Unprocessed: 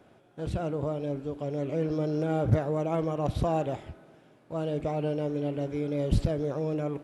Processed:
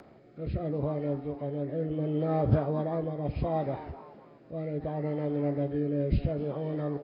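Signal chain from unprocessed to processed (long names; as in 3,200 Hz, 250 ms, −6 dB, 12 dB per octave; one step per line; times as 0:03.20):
hearing-aid frequency compression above 1,000 Hz 1.5 to 1
echo with shifted repeats 253 ms, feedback 42%, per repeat +130 Hz, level −17.5 dB
rotating-speaker cabinet horn 0.7 Hz
double-tracking delay 14 ms −10.5 dB
upward compression, threshold −46 dBFS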